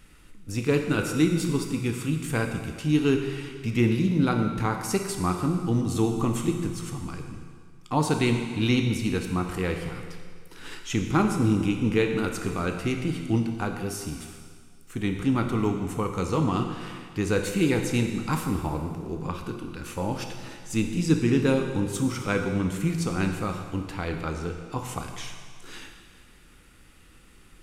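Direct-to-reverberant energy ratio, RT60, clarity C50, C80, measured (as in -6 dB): 4.0 dB, 1.9 s, 5.5 dB, 7.0 dB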